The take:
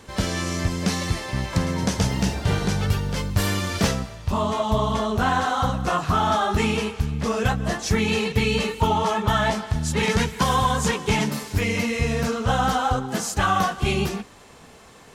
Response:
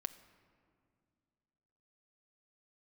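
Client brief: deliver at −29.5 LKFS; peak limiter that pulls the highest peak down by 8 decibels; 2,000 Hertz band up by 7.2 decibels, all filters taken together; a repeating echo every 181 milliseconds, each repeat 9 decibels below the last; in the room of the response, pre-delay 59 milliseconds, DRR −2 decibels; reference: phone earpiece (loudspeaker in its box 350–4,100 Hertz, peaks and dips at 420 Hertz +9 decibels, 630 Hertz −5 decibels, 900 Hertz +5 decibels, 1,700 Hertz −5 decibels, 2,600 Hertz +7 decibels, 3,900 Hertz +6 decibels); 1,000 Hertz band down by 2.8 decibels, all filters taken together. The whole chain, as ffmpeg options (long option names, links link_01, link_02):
-filter_complex "[0:a]equalizer=frequency=1000:width_type=o:gain=-8,equalizer=frequency=2000:width_type=o:gain=9,alimiter=limit=-14.5dB:level=0:latency=1,aecho=1:1:181|362|543|724:0.355|0.124|0.0435|0.0152,asplit=2[link_01][link_02];[1:a]atrim=start_sample=2205,adelay=59[link_03];[link_02][link_03]afir=irnorm=-1:irlink=0,volume=4dB[link_04];[link_01][link_04]amix=inputs=2:normalize=0,highpass=350,equalizer=frequency=420:width_type=q:width=4:gain=9,equalizer=frequency=630:width_type=q:width=4:gain=-5,equalizer=frequency=900:width_type=q:width=4:gain=5,equalizer=frequency=1700:width_type=q:width=4:gain=-5,equalizer=frequency=2600:width_type=q:width=4:gain=7,equalizer=frequency=3900:width_type=q:width=4:gain=6,lowpass=frequency=4100:width=0.5412,lowpass=frequency=4100:width=1.3066,volume=-10dB"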